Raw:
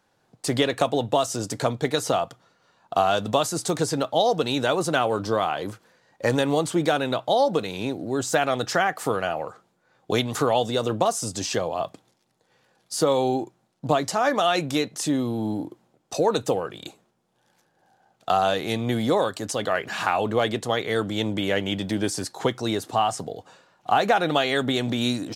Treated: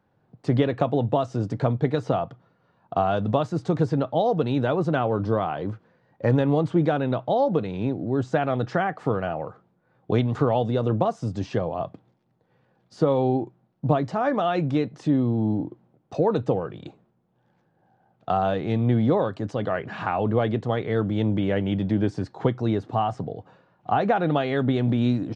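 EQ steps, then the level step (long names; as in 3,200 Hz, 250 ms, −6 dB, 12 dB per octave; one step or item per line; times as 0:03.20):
head-to-tape spacing loss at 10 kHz 35 dB
parametric band 120 Hz +8 dB 2 octaves
0.0 dB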